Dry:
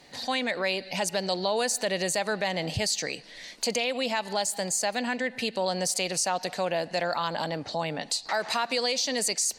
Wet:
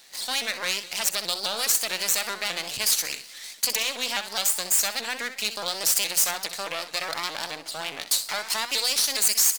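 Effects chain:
half-wave rectification
reversed playback
upward compression, threshold −41 dBFS
reversed playback
spectral tilt +4 dB per octave
mains-hum notches 60/120/180/240 Hz
repeating echo 63 ms, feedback 23%, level −11 dB
pitch modulation by a square or saw wave saw up 4.8 Hz, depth 160 cents

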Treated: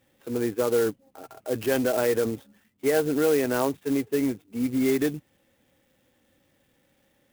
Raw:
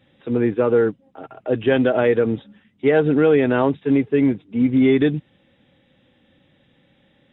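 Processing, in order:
parametric band 160 Hz −7 dB 1.3 octaves
0:00.76–0:02.30: transient designer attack −1 dB, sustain +4 dB
converter with an unsteady clock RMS 0.052 ms
level −5.5 dB

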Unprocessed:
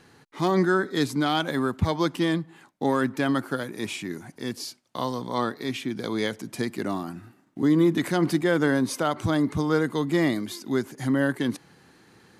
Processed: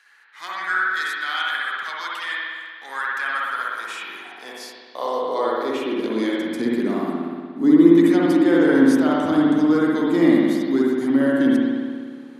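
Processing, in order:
high-pass filter sweep 1,600 Hz → 260 Hz, 0:02.97–0:06.27
spring reverb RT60 1.8 s, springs 59 ms, chirp 65 ms, DRR −5 dB
level −3.5 dB

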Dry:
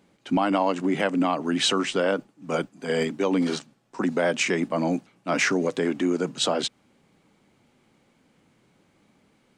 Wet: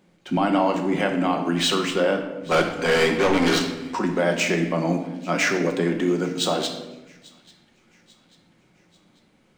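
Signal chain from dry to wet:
running median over 3 samples
0:02.51–0:03.99: mid-hump overdrive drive 24 dB, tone 4,200 Hz, clips at −12.5 dBFS
delay with a high-pass on its return 841 ms, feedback 48%, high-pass 1,900 Hz, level −23 dB
rectangular room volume 490 cubic metres, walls mixed, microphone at 0.97 metres

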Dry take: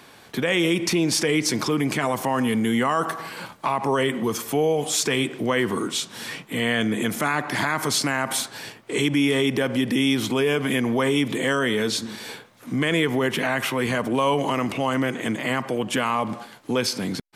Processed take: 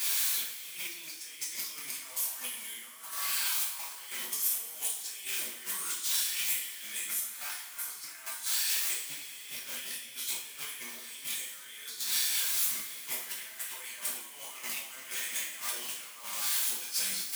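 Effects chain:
converter with a step at zero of −32 dBFS
high-pass filter 61 Hz
tilt shelving filter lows −7 dB, about 680 Hz
mains-hum notches 50/100/150/200/250 Hz
compressor whose output falls as the input rises −28 dBFS, ratio −0.5
first-order pre-emphasis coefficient 0.97
on a send: backwards echo 1,133 ms −20 dB
on the sum: coupled-rooms reverb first 0.51 s, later 4 s, from −18 dB, DRR −6 dB
level −9 dB

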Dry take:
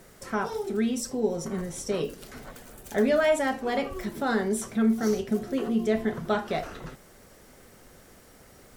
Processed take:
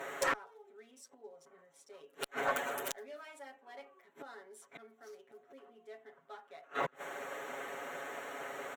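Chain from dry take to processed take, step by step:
adaptive Wiener filter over 9 samples
gate with flip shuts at −30 dBFS, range −37 dB
high-pass filter 600 Hz 12 dB per octave
asymmetric clip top −41 dBFS
comb filter 7.2 ms, depth 99%
level +13.5 dB

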